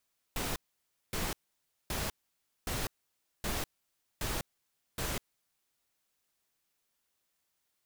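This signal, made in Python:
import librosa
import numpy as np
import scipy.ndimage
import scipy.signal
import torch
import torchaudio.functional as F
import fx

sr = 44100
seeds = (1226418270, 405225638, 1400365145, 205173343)

y = fx.noise_burst(sr, seeds[0], colour='pink', on_s=0.2, off_s=0.57, bursts=7, level_db=-34.5)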